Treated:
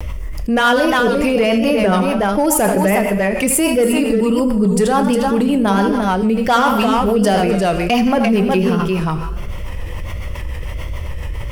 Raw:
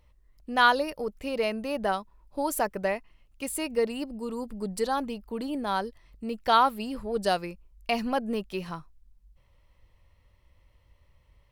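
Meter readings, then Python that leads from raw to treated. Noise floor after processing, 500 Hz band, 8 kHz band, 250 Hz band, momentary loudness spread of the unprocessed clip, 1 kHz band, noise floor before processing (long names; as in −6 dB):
−25 dBFS, +14.5 dB, +17.5 dB, +19.0 dB, 15 LU, +10.0 dB, −63 dBFS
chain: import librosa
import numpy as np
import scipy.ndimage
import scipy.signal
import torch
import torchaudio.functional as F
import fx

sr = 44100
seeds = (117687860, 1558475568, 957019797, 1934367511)

p1 = 10.0 ** (-22.0 / 20.0) * (np.abs((x / 10.0 ** (-22.0 / 20.0) + 3.0) % 4.0 - 2.0) - 1.0)
p2 = x + (p1 * librosa.db_to_amplitude(-8.0))
p3 = fx.echo_multitap(p2, sr, ms=(78, 99, 261, 356), db=(-10.5, -18.0, -19.5, -7.5))
p4 = fx.rev_double_slope(p3, sr, seeds[0], early_s=0.85, late_s=2.3, knee_db=-28, drr_db=9.5)
p5 = fx.dynamic_eq(p4, sr, hz=190.0, q=2.7, threshold_db=-47.0, ratio=4.0, max_db=6)
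p6 = fx.rotary(p5, sr, hz=7.0)
p7 = fx.vibrato(p6, sr, rate_hz=1.4, depth_cents=75.0)
p8 = fx.peak_eq(p7, sr, hz=4100.0, db=-12.5, octaves=0.23)
p9 = fx.env_flatten(p8, sr, amount_pct=70)
y = p9 * librosa.db_to_amplitude(7.5)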